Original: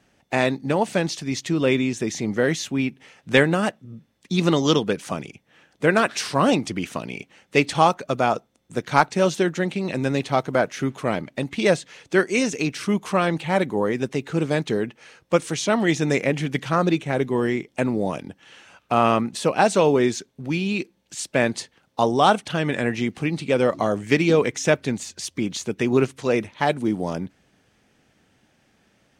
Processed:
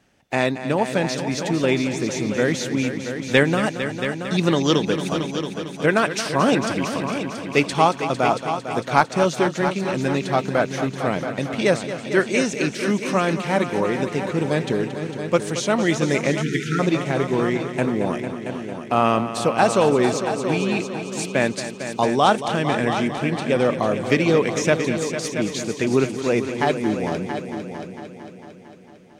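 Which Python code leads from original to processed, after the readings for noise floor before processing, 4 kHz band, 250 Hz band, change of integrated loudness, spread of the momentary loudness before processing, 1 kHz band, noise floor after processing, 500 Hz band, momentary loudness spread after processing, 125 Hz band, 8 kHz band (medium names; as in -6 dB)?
-64 dBFS, +1.0 dB, +1.0 dB, +1.0 dB, 10 LU, +1.0 dB, -38 dBFS, +1.0 dB, 8 LU, +1.5 dB, +1.0 dB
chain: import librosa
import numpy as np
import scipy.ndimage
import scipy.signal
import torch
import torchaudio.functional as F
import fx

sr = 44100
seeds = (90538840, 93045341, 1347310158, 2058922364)

y = fx.echo_heads(x, sr, ms=226, heads='all three', feedback_pct=50, wet_db=-12)
y = fx.spec_erase(y, sr, start_s=16.42, length_s=0.37, low_hz=490.0, high_hz=1300.0)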